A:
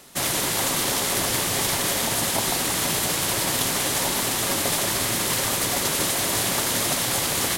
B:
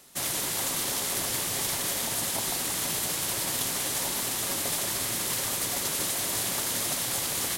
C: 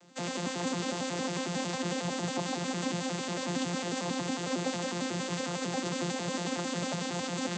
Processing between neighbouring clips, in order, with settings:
high-shelf EQ 4,300 Hz +5.5 dB; level −9 dB
vocoder with an arpeggio as carrier bare fifth, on F3, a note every 91 ms

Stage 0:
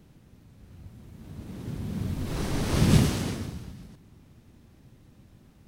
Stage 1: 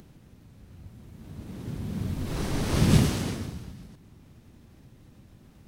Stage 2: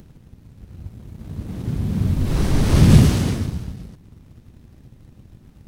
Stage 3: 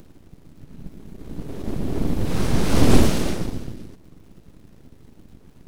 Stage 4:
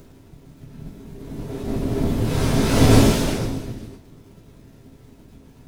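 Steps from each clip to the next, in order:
upward compression, threshold −47 dBFS
low-shelf EQ 180 Hz +9 dB; leveller curve on the samples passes 1; level +1.5 dB
surface crackle 130 per second −49 dBFS; full-wave rectification
convolution reverb, pre-delay 3 ms, DRR −4 dB; level −2 dB

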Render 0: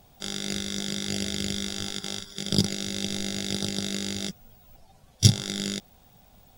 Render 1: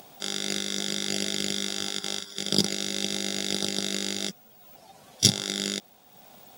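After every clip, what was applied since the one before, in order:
high-pass filter 250 Hz 12 dB per octave
upward compression, threshold −45 dBFS
level +2.5 dB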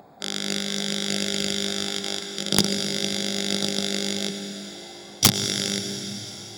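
adaptive Wiener filter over 15 samples
dense smooth reverb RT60 4.6 s, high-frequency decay 0.95×, pre-delay 85 ms, DRR 5.5 dB
wrap-around overflow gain 7 dB
level +3.5 dB

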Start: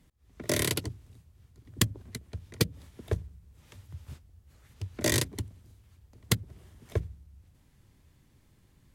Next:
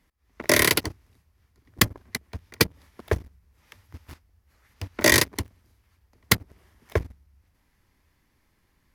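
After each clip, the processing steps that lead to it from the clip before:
flat-topped bell 7,700 Hz +8.5 dB
leveller curve on the samples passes 2
graphic EQ with 10 bands 125 Hz −8 dB, 1,000 Hz +5 dB, 2,000 Hz +7 dB, 8,000 Hz −11 dB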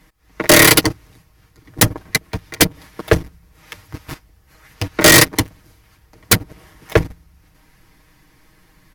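comb filter 6.4 ms, depth 69%
sine wavefolder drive 12 dB, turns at −1.5 dBFS
level −2 dB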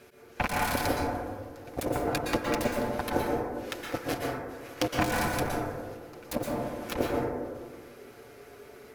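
compressor whose output falls as the input rises −21 dBFS, ratio −1
ring modulation 410 Hz
dense smooth reverb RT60 1.6 s, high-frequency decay 0.25×, pre-delay 105 ms, DRR −2.5 dB
level −7 dB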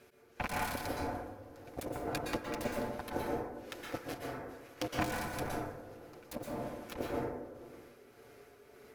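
amplitude tremolo 1.8 Hz, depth 39%
level −6.5 dB

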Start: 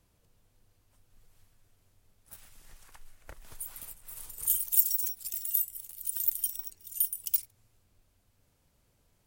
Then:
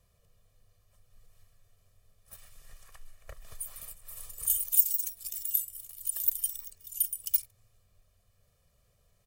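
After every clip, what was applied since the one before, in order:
comb filter 1.7 ms, depth 82%
level −2.5 dB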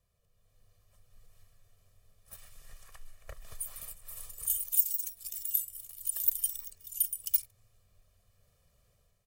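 automatic gain control gain up to 9 dB
level −8.5 dB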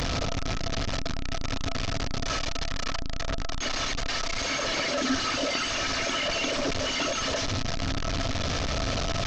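linear delta modulator 32 kbit/s, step −24 dBFS
hollow resonant body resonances 270/670/1,300 Hz, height 11 dB, ringing for 85 ms
level +2 dB

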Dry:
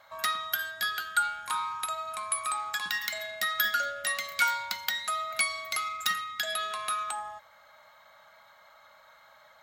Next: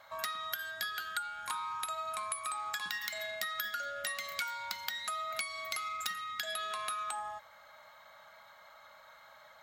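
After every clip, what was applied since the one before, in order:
downward compressor 10 to 1, threshold −34 dBFS, peak gain reduction 14.5 dB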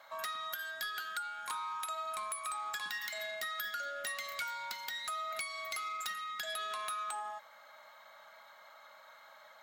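high-pass filter 230 Hz 12 dB per octave
soft clipping −30.5 dBFS, distortion −15 dB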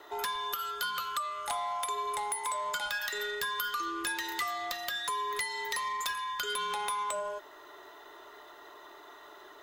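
frequency shifter −230 Hz
level +5.5 dB

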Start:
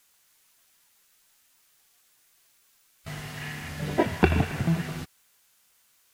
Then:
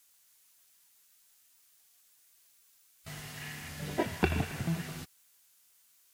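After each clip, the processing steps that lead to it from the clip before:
high-shelf EQ 3,800 Hz +8.5 dB
level −8 dB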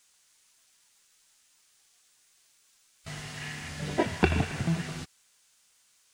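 Savitzky-Golay smoothing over 9 samples
level +4.5 dB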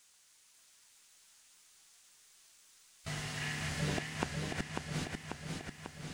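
gate with flip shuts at −23 dBFS, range −31 dB
feedback echo with a swinging delay time 543 ms, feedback 66%, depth 80 cents, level −4 dB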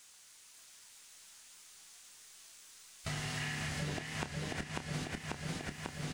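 downward compressor 6 to 1, threshold −42 dBFS, peak gain reduction 13.5 dB
double-tracking delay 28 ms −11 dB
level +6 dB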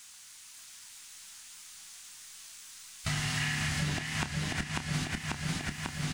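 parametric band 480 Hz −12 dB 1 octave
level +7.5 dB

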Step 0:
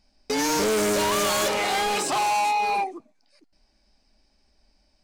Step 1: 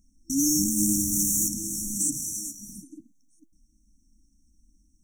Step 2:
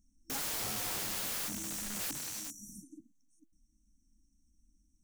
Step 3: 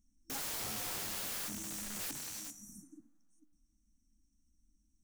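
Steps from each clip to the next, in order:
brick-wall band-stop 330–5,500 Hz; high-shelf EQ 7,800 Hz +5 dB; level +3.5 dB
wrap-around overflow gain 24.5 dB; level −7.5 dB
flanger 0.61 Hz, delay 8.8 ms, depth 5 ms, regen +87%; on a send at −19 dB: convolution reverb RT60 2.3 s, pre-delay 6 ms; on the sum: level +1.5 dB

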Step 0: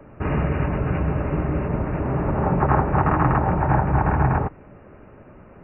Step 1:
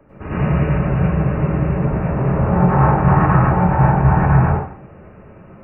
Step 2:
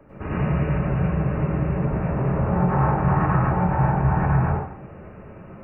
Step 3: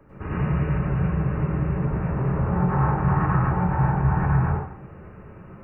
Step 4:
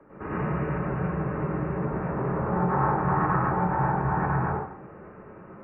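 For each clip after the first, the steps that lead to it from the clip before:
dense smooth reverb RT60 0.56 s, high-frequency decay 0.95×, pre-delay 85 ms, DRR −9.5 dB; level −6 dB
downward compressor 1.5 to 1, threshold −28 dBFS, peak gain reduction 7.5 dB
graphic EQ with 15 bands 250 Hz −4 dB, 630 Hz −7 dB, 2,500 Hz −4 dB
three-way crossover with the lows and the highs turned down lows −14 dB, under 200 Hz, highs −24 dB, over 2,300 Hz; level +2 dB

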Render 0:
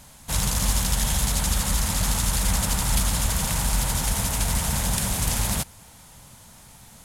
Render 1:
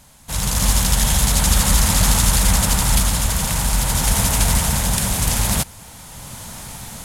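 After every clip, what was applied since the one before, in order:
automatic gain control gain up to 15.5 dB
level −1 dB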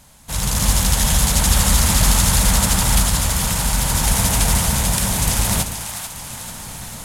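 echo with a time of its own for lows and highs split 680 Hz, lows 111 ms, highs 441 ms, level −8.5 dB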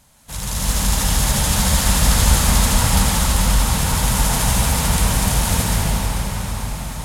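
convolution reverb RT60 5.8 s, pre-delay 119 ms, DRR −5.5 dB
level −5.5 dB

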